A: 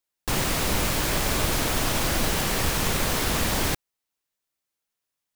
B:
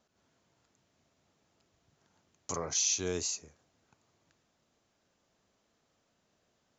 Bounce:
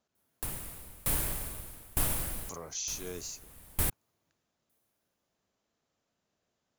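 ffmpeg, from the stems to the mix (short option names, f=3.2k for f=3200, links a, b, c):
-filter_complex "[0:a]highshelf=f=7.8k:t=q:w=1.5:g=10.5,acrossover=split=130[a][b];[b]acompressor=threshold=-26dB:ratio=4[c];[a][c]amix=inputs=2:normalize=0,aeval=exprs='val(0)*pow(10,-29*if(lt(mod(1.1*n/s,1),2*abs(1.1)/1000),1-mod(1.1*n/s,1)/(2*abs(1.1)/1000),(mod(1.1*n/s,1)-2*abs(1.1)/1000)/(1-2*abs(1.1)/1000))/20)':c=same,adelay=150,volume=-0.5dB[d];[1:a]volume=-7dB,asplit=2[e][f];[f]apad=whole_len=242681[g];[d][g]sidechaincompress=threshold=-52dB:ratio=4:attack=16:release=422[h];[h][e]amix=inputs=2:normalize=0"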